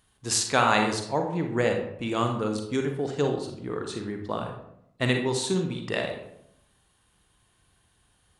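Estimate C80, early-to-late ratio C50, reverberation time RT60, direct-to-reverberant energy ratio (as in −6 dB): 9.0 dB, 5.5 dB, 0.75 s, 3.5 dB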